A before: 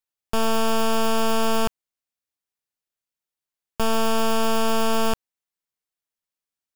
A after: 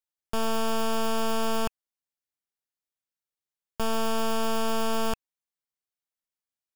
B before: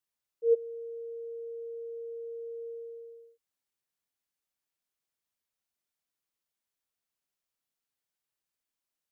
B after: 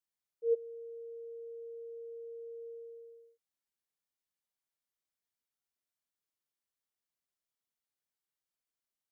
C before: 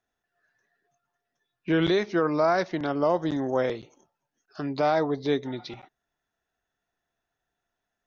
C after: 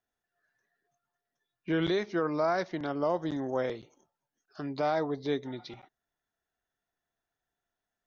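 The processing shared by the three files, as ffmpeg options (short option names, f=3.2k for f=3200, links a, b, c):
-af "bandreject=f=2.6k:w=21,volume=-5.5dB"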